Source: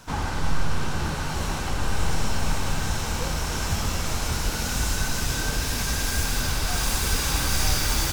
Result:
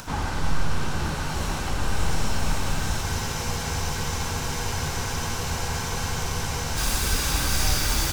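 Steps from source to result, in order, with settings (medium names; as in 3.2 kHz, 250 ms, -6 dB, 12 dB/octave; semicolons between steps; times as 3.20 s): upward compressor, threshold -33 dBFS; spectral freeze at 3.05 s, 3.71 s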